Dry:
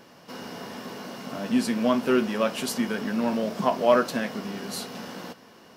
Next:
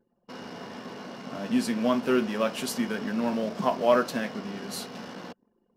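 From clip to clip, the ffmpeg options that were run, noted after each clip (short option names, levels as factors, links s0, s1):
-af "anlmdn=0.251,volume=0.794"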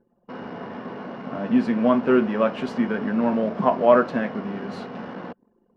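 -af "lowpass=1800,volume=2"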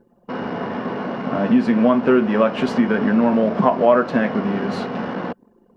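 -af "acompressor=threshold=0.0708:ratio=2.5,volume=2.82"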